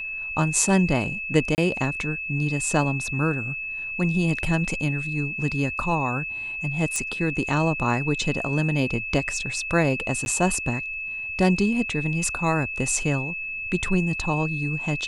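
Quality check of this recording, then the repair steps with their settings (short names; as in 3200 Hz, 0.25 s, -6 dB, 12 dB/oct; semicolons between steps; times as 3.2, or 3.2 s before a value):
tone 2600 Hz -29 dBFS
1.55–1.58 gap 29 ms
6.96 pop -13 dBFS
10.25–10.26 gap 11 ms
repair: de-click; notch 2600 Hz, Q 30; interpolate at 1.55, 29 ms; interpolate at 10.25, 11 ms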